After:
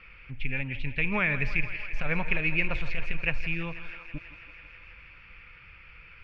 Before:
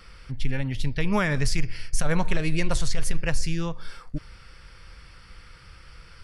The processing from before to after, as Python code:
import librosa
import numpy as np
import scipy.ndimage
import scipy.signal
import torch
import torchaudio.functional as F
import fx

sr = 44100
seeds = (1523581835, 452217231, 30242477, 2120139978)

y = fx.ladder_lowpass(x, sr, hz=2600.0, resonance_pct=80)
y = fx.echo_thinned(y, sr, ms=163, feedback_pct=82, hz=300.0, wet_db=-14)
y = y * librosa.db_to_amplitude(5.5)